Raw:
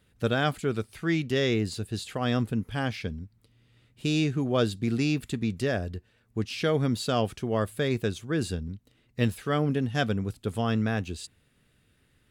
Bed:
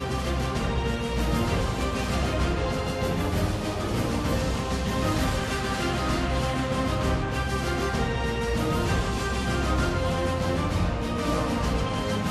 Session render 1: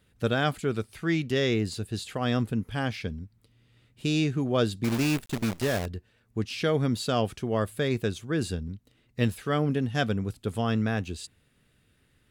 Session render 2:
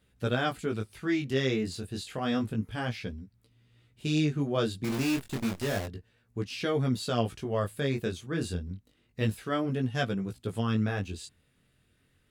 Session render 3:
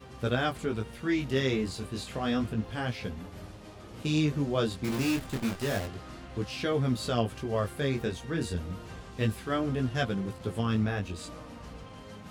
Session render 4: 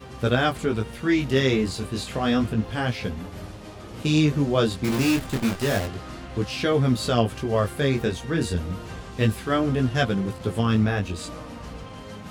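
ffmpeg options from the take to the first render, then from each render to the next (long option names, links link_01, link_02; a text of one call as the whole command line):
ffmpeg -i in.wav -filter_complex "[0:a]asettb=1/sr,asplit=3[link_01][link_02][link_03];[link_01]atrim=end=4.844[link_04];[link_02]atrim=start=4.84:end=5.86,asetpts=PTS-STARTPTS,afade=type=in:duration=0.004:curve=qsin,afade=type=out:start_time=1.016:duration=0.004:curve=qsin,acrusher=bits=6:dc=4:mix=0:aa=0.000001[link_05];[link_03]atrim=start=5.856[link_06];[link_04][link_05]acrossfade=duration=0.004:curve1=hsin:curve2=qsin[link_07];[link_07][link_06]acrossfade=duration=0.004:curve1=qsin:curve2=hsin" out.wav
ffmpeg -i in.wav -af "flanger=delay=15.5:depth=7.6:speed=0.3" out.wav
ffmpeg -i in.wav -i bed.wav -filter_complex "[1:a]volume=-19dB[link_01];[0:a][link_01]amix=inputs=2:normalize=0" out.wav
ffmpeg -i in.wav -af "volume=7dB" out.wav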